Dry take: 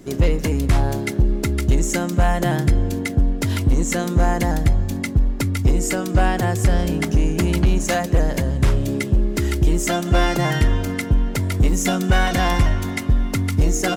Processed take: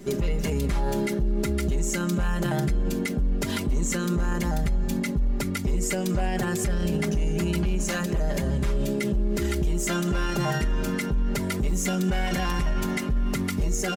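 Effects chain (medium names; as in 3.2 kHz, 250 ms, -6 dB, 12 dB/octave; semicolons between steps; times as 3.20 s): comb 5 ms, depth 84%; peak limiter -16 dBFS, peak gain reduction 12 dB; trim -1.5 dB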